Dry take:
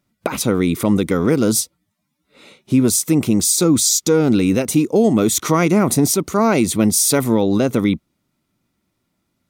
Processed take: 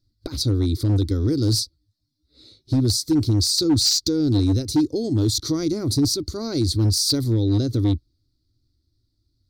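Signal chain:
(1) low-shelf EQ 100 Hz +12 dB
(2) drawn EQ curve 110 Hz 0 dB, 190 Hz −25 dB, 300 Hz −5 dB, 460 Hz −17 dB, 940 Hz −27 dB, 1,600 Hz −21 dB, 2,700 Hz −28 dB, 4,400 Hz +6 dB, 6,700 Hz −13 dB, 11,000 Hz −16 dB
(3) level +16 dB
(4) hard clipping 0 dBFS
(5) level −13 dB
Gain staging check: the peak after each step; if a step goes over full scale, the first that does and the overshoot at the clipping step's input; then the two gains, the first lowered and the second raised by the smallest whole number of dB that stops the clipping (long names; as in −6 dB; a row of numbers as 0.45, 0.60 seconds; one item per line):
−1.5, −8.0, +8.0, 0.0, −13.0 dBFS
step 3, 8.0 dB
step 3 +8 dB, step 5 −5 dB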